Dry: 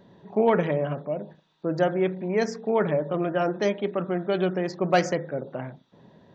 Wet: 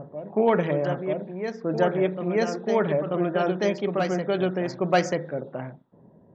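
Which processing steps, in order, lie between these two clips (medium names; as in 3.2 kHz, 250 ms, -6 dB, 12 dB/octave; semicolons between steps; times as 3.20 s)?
reverse echo 937 ms -6.5 dB; level-controlled noise filter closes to 640 Hz, open at -22 dBFS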